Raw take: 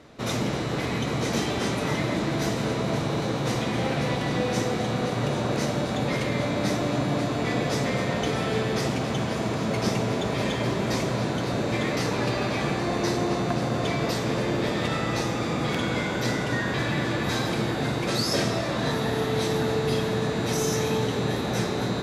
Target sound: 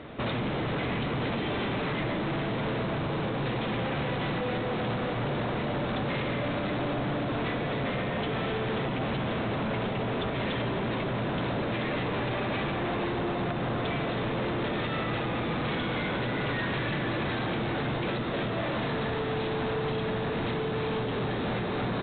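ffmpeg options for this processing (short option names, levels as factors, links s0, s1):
-af "alimiter=limit=0.0668:level=0:latency=1:release=459,aresample=8000,aeval=exprs='0.0708*sin(PI/2*2.24*val(0)/0.0708)':c=same,aresample=44100,volume=0.668"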